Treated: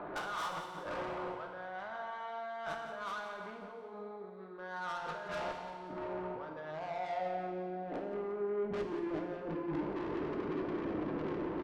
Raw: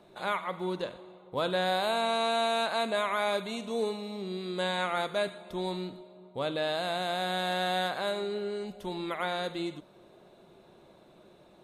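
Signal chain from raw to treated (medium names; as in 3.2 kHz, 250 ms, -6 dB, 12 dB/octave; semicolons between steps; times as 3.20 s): local Wiener filter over 15 samples; tilt EQ -3.5 dB/octave; compressor with a negative ratio -43 dBFS, ratio -1; band-pass sweep 1.4 kHz -> 330 Hz, 6.65–7.58 s; valve stage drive 53 dB, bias 0.25; feedback delay 176 ms, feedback 49%, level -11.5 dB; FDN reverb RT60 1.6 s, low-frequency decay 0.8×, high-frequency decay 1×, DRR 2.5 dB; trim +16 dB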